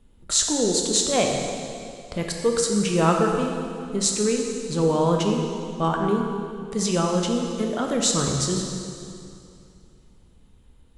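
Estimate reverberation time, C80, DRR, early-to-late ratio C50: 2.5 s, 3.5 dB, 1.0 dB, 2.5 dB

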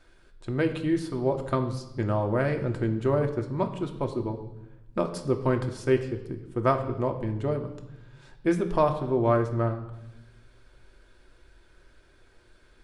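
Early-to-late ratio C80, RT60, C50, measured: 12.5 dB, 0.90 s, 10.5 dB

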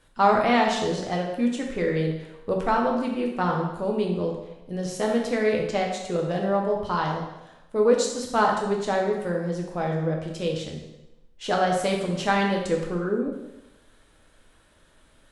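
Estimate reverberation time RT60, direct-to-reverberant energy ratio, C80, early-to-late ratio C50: 0.95 s, 0.0 dB, 6.5 dB, 4.0 dB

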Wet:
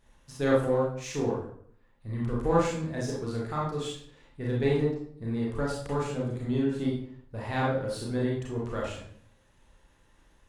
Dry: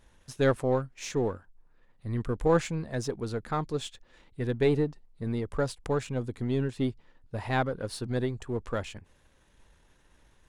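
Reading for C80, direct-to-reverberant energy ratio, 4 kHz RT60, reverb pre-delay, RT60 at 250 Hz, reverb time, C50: 7.0 dB, -4.5 dB, 0.45 s, 29 ms, 0.70 s, 0.60 s, 1.5 dB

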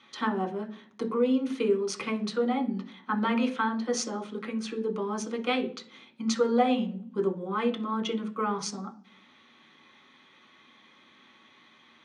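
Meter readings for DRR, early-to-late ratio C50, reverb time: 2.5 dB, 14.5 dB, 0.45 s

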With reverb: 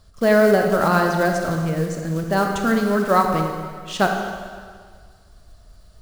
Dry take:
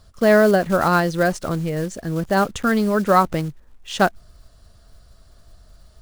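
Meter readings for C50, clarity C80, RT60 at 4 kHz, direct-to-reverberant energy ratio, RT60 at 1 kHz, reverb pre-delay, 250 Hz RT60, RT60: 3.5 dB, 4.5 dB, 1.7 s, 2.5 dB, 1.8 s, 20 ms, 1.9 s, 1.8 s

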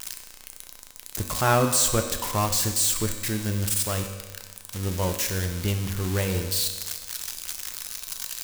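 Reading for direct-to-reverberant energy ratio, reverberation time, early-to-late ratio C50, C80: 5.0 dB, 1.4 s, 7.5 dB, 9.0 dB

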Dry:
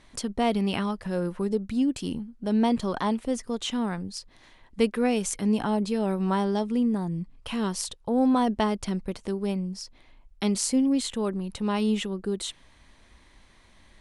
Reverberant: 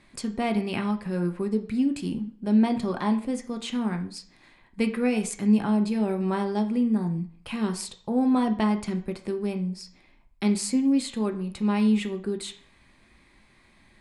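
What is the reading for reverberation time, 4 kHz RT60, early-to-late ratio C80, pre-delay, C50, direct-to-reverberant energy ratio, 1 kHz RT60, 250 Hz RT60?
0.50 s, 0.45 s, 17.0 dB, 3 ms, 13.0 dB, 5.5 dB, 0.50 s, 0.60 s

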